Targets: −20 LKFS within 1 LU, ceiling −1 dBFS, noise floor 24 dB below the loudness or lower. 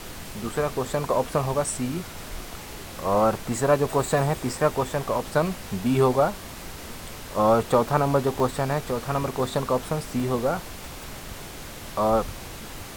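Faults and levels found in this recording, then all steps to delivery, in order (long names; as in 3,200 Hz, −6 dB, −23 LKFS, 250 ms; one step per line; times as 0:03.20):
number of dropouts 3; longest dropout 1.4 ms; background noise floor −39 dBFS; target noise floor −49 dBFS; integrated loudness −25.0 LKFS; sample peak −6.5 dBFS; target loudness −20.0 LKFS
→ repair the gap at 0:08.40/0:09.40/0:10.20, 1.4 ms
noise reduction from a noise print 10 dB
level +5 dB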